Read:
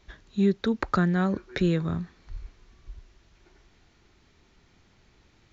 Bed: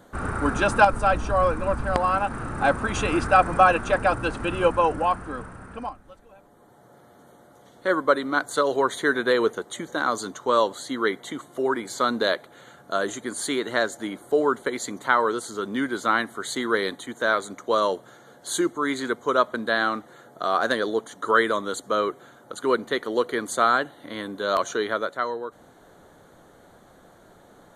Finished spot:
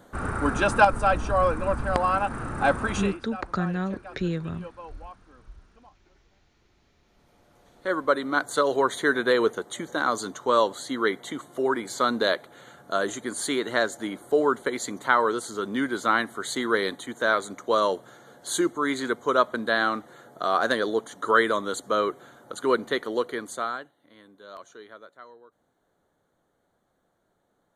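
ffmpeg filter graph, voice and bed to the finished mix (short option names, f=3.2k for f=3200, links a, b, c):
-filter_complex "[0:a]adelay=2600,volume=-4dB[a];[1:a]volume=20.5dB,afade=t=out:st=2.91:d=0.27:silence=0.0891251,afade=t=in:st=7.03:d=1.4:silence=0.0841395,afade=t=out:st=22.9:d=1.02:silence=0.105925[b];[a][b]amix=inputs=2:normalize=0"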